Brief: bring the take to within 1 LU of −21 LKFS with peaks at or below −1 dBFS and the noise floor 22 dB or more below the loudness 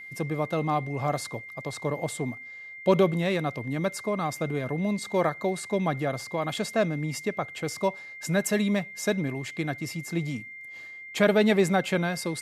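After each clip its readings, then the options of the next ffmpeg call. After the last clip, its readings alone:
interfering tone 2,100 Hz; level of the tone −40 dBFS; integrated loudness −28.0 LKFS; sample peak −7.0 dBFS; target loudness −21.0 LKFS
→ -af "bandreject=frequency=2100:width=30"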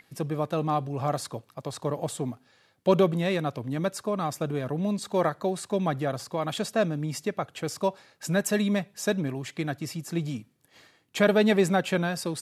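interfering tone none found; integrated loudness −28.0 LKFS; sample peak −7.0 dBFS; target loudness −21.0 LKFS
→ -af "volume=7dB,alimiter=limit=-1dB:level=0:latency=1"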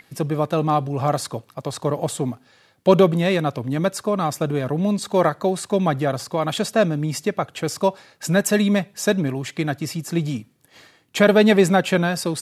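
integrated loudness −21.0 LKFS; sample peak −1.0 dBFS; background noise floor −58 dBFS

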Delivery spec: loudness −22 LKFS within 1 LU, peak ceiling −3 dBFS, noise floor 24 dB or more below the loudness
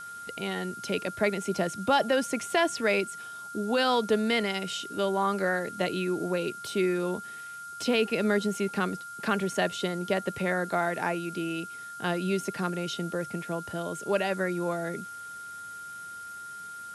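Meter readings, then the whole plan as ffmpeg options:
interfering tone 1,400 Hz; level of the tone −39 dBFS; background noise floor −42 dBFS; target noise floor −53 dBFS; integrated loudness −29.0 LKFS; sample peak −12.5 dBFS; target loudness −22.0 LKFS
→ -af "bandreject=frequency=1400:width=30"
-af "afftdn=noise_reduction=11:noise_floor=-42"
-af "volume=7dB"

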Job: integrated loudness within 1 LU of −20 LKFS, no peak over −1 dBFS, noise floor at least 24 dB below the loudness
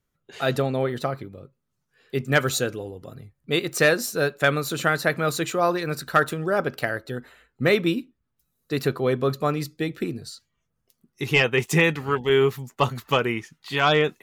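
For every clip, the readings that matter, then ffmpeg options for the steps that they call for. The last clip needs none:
integrated loudness −23.5 LKFS; sample peak −7.5 dBFS; target loudness −20.0 LKFS
→ -af "volume=3.5dB"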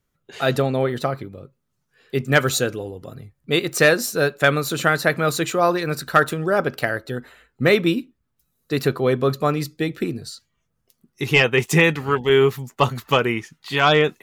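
integrated loudness −20.0 LKFS; sample peak −4.0 dBFS; background noise floor −73 dBFS

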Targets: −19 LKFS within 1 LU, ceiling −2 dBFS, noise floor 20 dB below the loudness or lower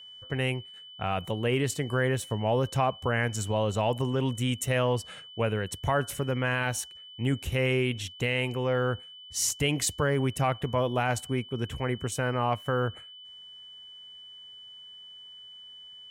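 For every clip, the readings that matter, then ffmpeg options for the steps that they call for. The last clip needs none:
interfering tone 3,000 Hz; level of the tone −45 dBFS; integrated loudness −29.0 LKFS; sample peak −15.5 dBFS; target loudness −19.0 LKFS
→ -af "bandreject=frequency=3000:width=30"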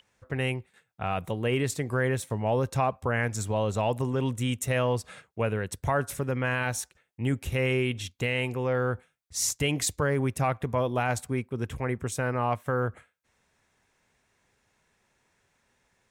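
interfering tone none found; integrated loudness −29.0 LKFS; sample peak −15.5 dBFS; target loudness −19.0 LKFS
→ -af "volume=10dB"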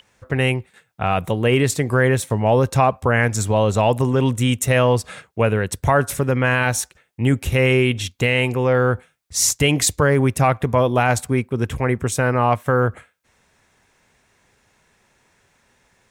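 integrated loudness −19.0 LKFS; sample peak −5.5 dBFS; background noise floor −64 dBFS

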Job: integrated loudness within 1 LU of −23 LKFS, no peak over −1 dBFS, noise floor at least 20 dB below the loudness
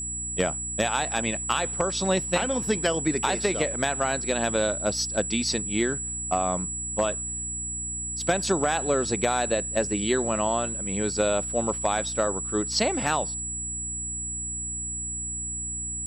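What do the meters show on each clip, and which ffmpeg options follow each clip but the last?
mains hum 60 Hz; hum harmonics up to 300 Hz; level of the hum −38 dBFS; interfering tone 7,800 Hz; level of the tone −30 dBFS; integrated loudness −26.0 LKFS; sample peak −11.5 dBFS; target loudness −23.0 LKFS
→ -af "bandreject=frequency=60:width_type=h:width=6,bandreject=frequency=120:width_type=h:width=6,bandreject=frequency=180:width_type=h:width=6,bandreject=frequency=240:width_type=h:width=6,bandreject=frequency=300:width_type=h:width=6"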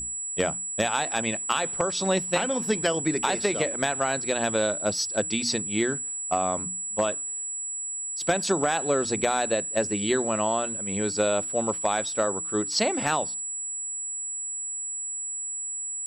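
mains hum none found; interfering tone 7,800 Hz; level of the tone −30 dBFS
→ -af "bandreject=frequency=7800:width=30"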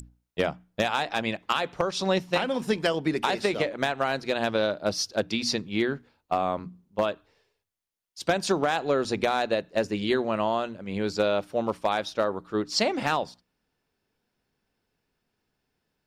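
interfering tone none found; integrated loudness −27.5 LKFS; sample peak −12.5 dBFS; target loudness −23.0 LKFS
→ -af "volume=4.5dB"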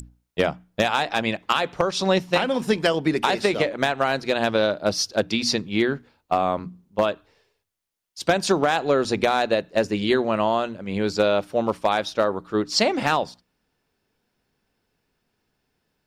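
integrated loudness −23.0 LKFS; sample peak −8.0 dBFS; background noise floor −75 dBFS

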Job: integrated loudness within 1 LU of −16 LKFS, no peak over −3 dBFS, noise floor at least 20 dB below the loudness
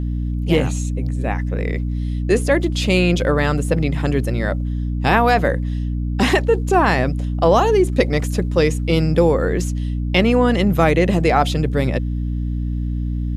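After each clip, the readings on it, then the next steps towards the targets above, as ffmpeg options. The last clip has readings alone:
mains hum 60 Hz; hum harmonics up to 300 Hz; level of the hum −19 dBFS; integrated loudness −18.5 LKFS; sample peak −1.5 dBFS; target loudness −16.0 LKFS
→ -af "bandreject=frequency=60:width_type=h:width=4,bandreject=frequency=120:width_type=h:width=4,bandreject=frequency=180:width_type=h:width=4,bandreject=frequency=240:width_type=h:width=4,bandreject=frequency=300:width_type=h:width=4"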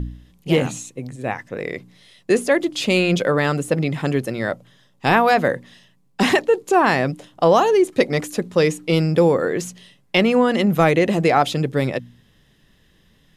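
mains hum none found; integrated loudness −19.0 LKFS; sample peak −2.5 dBFS; target loudness −16.0 LKFS
→ -af "volume=3dB,alimiter=limit=-3dB:level=0:latency=1"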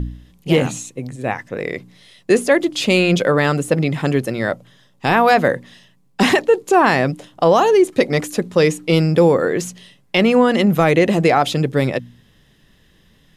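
integrated loudness −16.5 LKFS; sample peak −3.0 dBFS; background noise floor −55 dBFS

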